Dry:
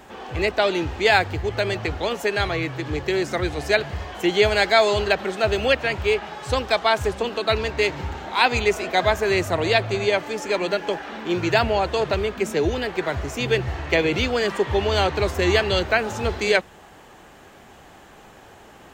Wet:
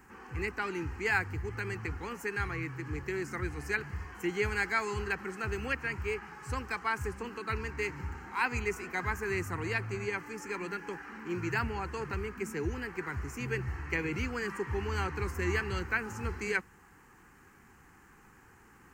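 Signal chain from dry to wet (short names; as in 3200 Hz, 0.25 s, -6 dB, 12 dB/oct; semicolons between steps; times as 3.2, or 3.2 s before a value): fixed phaser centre 1500 Hz, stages 4; crackle 550/s -56 dBFS; gain -8 dB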